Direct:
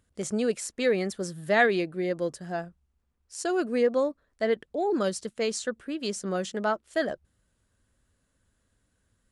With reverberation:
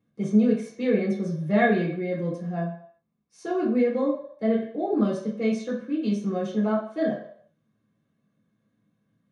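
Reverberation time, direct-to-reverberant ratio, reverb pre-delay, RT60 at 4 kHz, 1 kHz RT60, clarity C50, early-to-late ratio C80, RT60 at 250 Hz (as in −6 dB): 0.60 s, −10.0 dB, 3 ms, 0.55 s, 0.60 s, 4.5 dB, 8.5 dB, 0.40 s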